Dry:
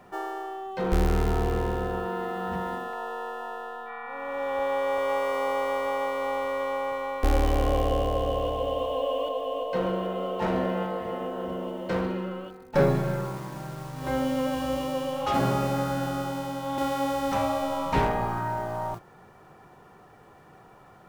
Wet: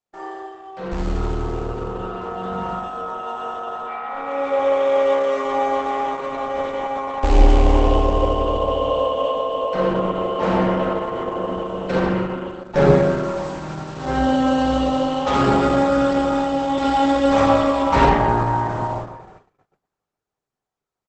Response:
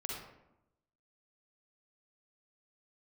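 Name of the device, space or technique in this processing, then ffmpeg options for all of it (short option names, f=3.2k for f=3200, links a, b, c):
speakerphone in a meeting room: -filter_complex "[0:a]bandreject=f=1k:w=29,asettb=1/sr,asplit=3[a][b][c];[a]atrim=end=4.144[d];[b]atrim=start=4.14:end=5.46,asetpts=PTS-STARTPTS,afade=t=in:d=0.004:c=qsin,afade=t=out:st=1.316:d=0.004:c=qsin,highpass=82[e];[c]atrim=start=5.456[f];[d][e]acrossfade=d=0.004:c1=hsin:c2=qsin[g];[g][f]acrossfade=d=0.004:c1=qsin:c2=hsin,equalizer=f=200:w=0.45:g=-2,asplit=2[h][i];[i]adelay=151.6,volume=-20dB,highshelf=f=4k:g=-3.41[j];[h][j]amix=inputs=2:normalize=0[k];[1:a]atrim=start_sample=2205[l];[k][l]afir=irnorm=-1:irlink=0,asplit=2[m][n];[n]adelay=330,highpass=300,lowpass=3.4k,asoftclip=type=hard:threshold=-18dB,volume=-27dB[o];[m][o]amix=inputs=2:normalize=0,dynaudnorm=f=470:g=13:m=16.5dB,agate=range=-37dB:threshold=-42dB:ratio=16:detection=peak" -ar 48000 -c:a libopus -b:a 12k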